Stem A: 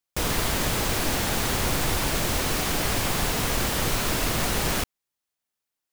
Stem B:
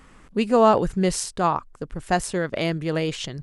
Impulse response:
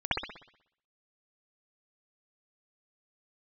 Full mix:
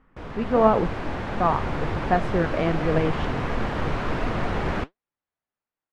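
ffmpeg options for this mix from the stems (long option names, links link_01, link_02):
-filter_complex "[0:a]volume=-6dB[link_01];[1:a]volume=-5dB,asplit=3[link_02][link_03][link_04];[link_02]atrim=end=0.9,asetpts=PTS-STARTPTS,afade=type=out:start_time=0.896:duration=0.004:curve=hsin[link_05];[link_03]atrim=start=0.9:end=1.4,asetpts=PTS-STARTPTS,volume=0[link_06];[link_04]atrim=start=1.4,asetpts=PTS-STARTPTS,afade=type=in:duration=0.004:curve=hsin[link_07];[link_05][link_06][link_07]concat=n=3:v=0:a=1[link_08];[link_01][link_08]amix=inputs=2:normalize=0,dynaudnorm=framelen=310:gausssize=3:maxgain=12dB,flanger=delay=4:depth=9.4:regen=70:speed=1.4:shape=sinusoidal,lowpass=1700"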